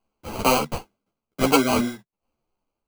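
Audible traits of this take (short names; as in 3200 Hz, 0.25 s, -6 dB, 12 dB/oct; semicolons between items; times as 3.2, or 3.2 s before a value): aliases and images of a low sample rate 1800 Hz, jitter 0%; tremolo saw down 0.94 Hz, depth 80%; a shimmering, thickened sound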